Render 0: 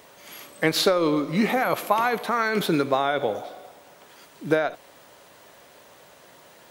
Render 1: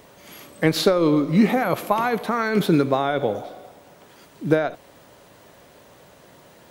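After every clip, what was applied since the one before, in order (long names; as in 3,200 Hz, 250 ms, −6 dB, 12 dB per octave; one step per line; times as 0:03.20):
low-shelf EQ 360 Hz +11 dB
level −1.5 dB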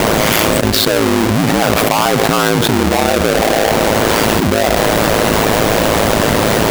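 each half-wave held at its own peak
ring modulation 54 Hz
envelope flattener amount 100%
level −1.5 dB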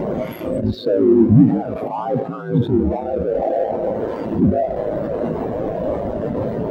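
backwards echo 79 ms −8.5 dB
boost into a limiter +8 dB
every bin expanded away from the loudest bin 2.5 to 1
level −1 dB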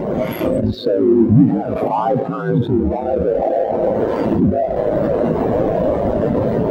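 camcorder AGC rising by 21 dB per second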